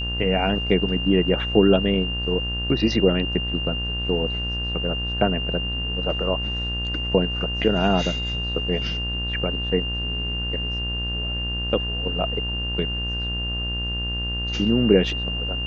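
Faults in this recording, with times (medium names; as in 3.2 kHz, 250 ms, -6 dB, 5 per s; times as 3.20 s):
buzz 60 Hz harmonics 32 -29 dBFS
whine 2.8 kHz -27 dBFS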